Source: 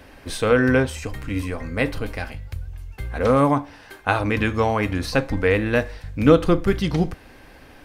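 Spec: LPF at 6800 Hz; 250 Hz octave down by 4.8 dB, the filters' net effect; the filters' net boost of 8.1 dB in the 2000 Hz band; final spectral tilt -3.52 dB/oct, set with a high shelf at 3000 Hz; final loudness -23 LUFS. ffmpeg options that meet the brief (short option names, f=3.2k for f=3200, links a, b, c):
-af "lowpass=6.8k,equalizer=f=250:t=o:g=-6.5,equalizer=f=2k:t=o:g=9,highshelf=f=3k:g=4.5,volume=-3dB"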